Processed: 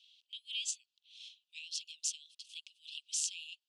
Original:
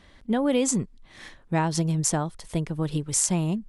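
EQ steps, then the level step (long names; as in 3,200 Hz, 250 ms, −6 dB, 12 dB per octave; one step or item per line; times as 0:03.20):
Butterworth high-pass 2,700 Hz 96 dB per octave
head-to-tape spacing loss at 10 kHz 28 dB
+9.5 dB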